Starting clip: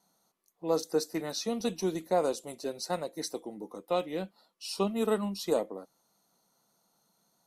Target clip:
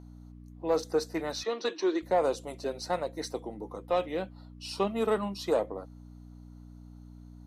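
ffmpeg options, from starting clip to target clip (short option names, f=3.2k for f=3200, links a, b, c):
-filter_complex "[0:a]aeval=exprs='val(0)+0.00708*(sin(2*PI*60*n/s)+sin(2*PI*2*60*n/s)/2+sin(2*PI*3*60*n/s)/3+sin(2*PI*4*60*n/s)/4+sin(2*PI*5*60*n/s)/5)':c=same,asplit=3[a][b][c];[a]afade=t=out:st=1.43:d=0.02[d];[b]highpass=f=320:w=0.5412,highpass=f=320:w=1.3066,equalizer=f=330:t=q:w=4:g=8,equalizer=f=750:t=q:w=4:g=-7,equalizer=f=1.1k:t=q:w=4:g=5,equalizer=f=1.7k:t=q:w=4:g=9,equalizer=f=4.1k:t=q:w=4:g=6,lowpass=f=6.2k:w=0.5412,lowpass=f=6.2k:w=1.3066,afade=t=in:st=1.43:d=0.02,afade=t=out:st=2.01:d=0.02[e];[c]afade=t=in:st=2.01:d=0.02[f];[d][e][f]amix=inputs=3:normalize=0,asplit=2[g][h];[h]highpass=f=720:p=1,volume=12dB,asoftclip=type=tanh:threshold=-15dB[i];[g][i]amix=inputs=2:normalize=0,lowpass=f=1.8k:p=1,volume=-6dB"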